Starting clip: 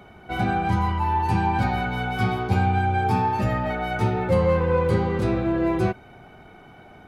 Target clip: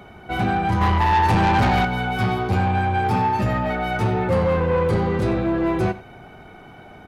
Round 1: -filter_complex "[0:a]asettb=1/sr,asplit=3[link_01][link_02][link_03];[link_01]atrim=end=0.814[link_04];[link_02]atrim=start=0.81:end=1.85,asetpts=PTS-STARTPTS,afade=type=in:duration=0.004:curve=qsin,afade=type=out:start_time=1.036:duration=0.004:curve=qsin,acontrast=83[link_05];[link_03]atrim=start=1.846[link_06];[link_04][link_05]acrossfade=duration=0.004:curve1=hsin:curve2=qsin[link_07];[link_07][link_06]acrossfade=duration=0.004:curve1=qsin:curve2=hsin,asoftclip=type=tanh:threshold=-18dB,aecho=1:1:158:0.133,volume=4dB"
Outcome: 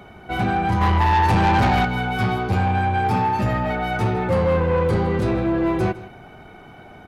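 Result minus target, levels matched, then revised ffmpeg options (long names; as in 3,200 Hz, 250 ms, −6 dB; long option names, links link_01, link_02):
echo 66 ms late
-filter_complex "[0:a]asettb=1/sr,asplit=3[link_01][link_02][link_03];[link_01]atrim=end=0.814[link_04];[link_02]atrim=start=0.81:end=1.85,asetpts=PTS-STARTPTS,afade=type=in:duration=0.004:curve=qsin,afade=type=out:start_time=1.036:duration=0.004:curve=qsin,acontrast=83[link_05];[link_03]atrim=start=1.846[link_06];[link_04][link_05]acrossfade=duration=0.004:curve1=hsin:curve2=qsin[link_07];[link_07][link_06]acrossfade=duration=0.004:curve1=qsin:curve2=hsin,asoftclip=type=tanh:threshold=-18dB,aecho=1:1:92:0.133,volume=4dB"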